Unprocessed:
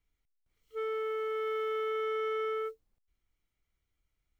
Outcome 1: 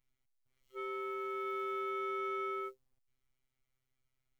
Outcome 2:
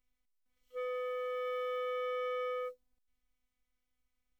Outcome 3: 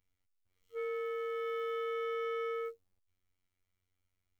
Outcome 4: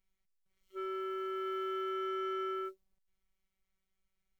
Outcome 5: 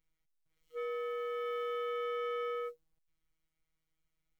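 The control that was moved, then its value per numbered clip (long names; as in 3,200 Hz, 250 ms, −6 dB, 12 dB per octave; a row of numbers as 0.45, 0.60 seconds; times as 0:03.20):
phases set to zero, frequency: 130, 250, 92, 190, 160 Hertz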